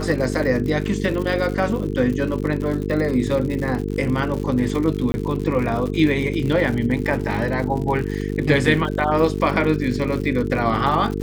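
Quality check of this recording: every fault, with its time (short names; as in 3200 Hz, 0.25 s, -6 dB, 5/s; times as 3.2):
buzz 50 Hz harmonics 9 -25 dBFS
crackle 110/s -27 dBFS
5.12–5.14 gap 20 ms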